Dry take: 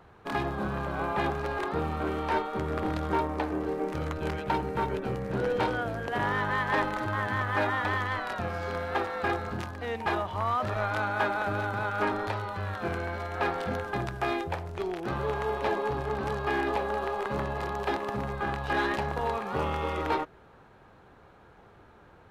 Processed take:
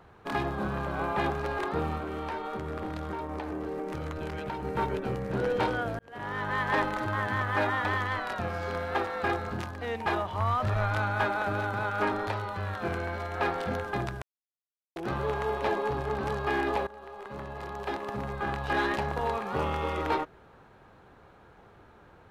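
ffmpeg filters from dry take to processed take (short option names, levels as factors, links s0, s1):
-filter_complex "[0:a]asettb=1/sr,asplit=3[s0][s1][s2];[s0]atrim=end=1.974[s3];[s1]atrim=start=1.97:end=4.65,asetpts=PTS-STARTPTS,afade=t=in:d=0.004:c=qsin,afade=t=out:st=2.676:d=0.004:c=qsin,acompressor=threshold=0.0316:ratio=10:attack=3.2:release=140:knee=1:detection=peak[s4];[s2]atrim=start=4.646[s5];[s3][s4]acrossfade=d=0.004:c1=hsin:c2=qsin[s6];[s6][s5]acrossfade=d=0.004:c1=qsin:c2=hsin,asplit=3[s7][s8][s9];[s7]afade=t=out:st=10.39:d=0.02[s10];[s8]asubboost=boost=2.5:cutoff=160,afade=t=in:st=10.39:d=0.02,afade=t=out:st=11.25:d=0.02[s11];[s9]afade=t=in:st=11.25:d=0.02[s12];[s10][s11][s12]amix=inputs=3:normalize=0,asplit=5[s13][s14][s15][s16][s17];[s13]atrim=end=5.99,asetpts=PTS-STARTPTS,afade=t=out:st=5.986:d=0.004:c=hsin[s18];[s14]atrim=start=5.99:end=14.22,asetpts=PTS-STARTPTS,afade=t=in:d=0.66,afade=t=out:st=8.226:d=0.004:c=hsin[s19];[s15]atrim=start=14.22:end=14.96,asetpts=PTS-STARTPTS,volume=0[s20];[s16]atrim=start=14.96:end=16.87,asetpts=PTS-STARTPTS,afade=t=in:d=0.004:c=hsin,afade=t=out:st=1.906:d=0.004:c=hsin:silence=0.112202[s21];[s17]atrim=start=16.87,asetpts=PTS-STARTPTS,afade=t=in:d=1.75:silence=0.112202[s22];[s18][s19][s20][s21][s22]concat=n=5:v=0:a=1"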